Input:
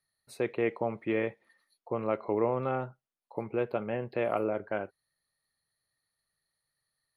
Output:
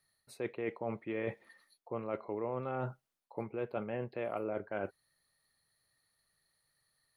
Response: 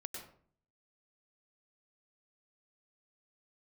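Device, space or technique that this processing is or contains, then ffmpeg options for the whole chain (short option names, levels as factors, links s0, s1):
compression on the reversed sound: -af "areverse,acompressor=threshold=0.01:ratio=6,areverse,volume=1.88"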